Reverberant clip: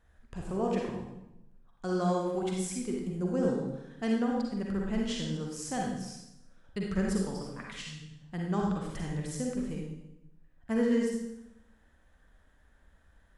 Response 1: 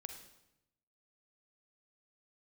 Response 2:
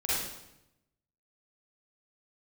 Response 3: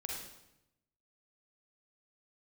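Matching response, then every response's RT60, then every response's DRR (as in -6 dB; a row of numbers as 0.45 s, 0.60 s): 3; 0.90 s, 0.85 s, 0.85 s; 5.5 dB, -9.5 dB, -2.0 dB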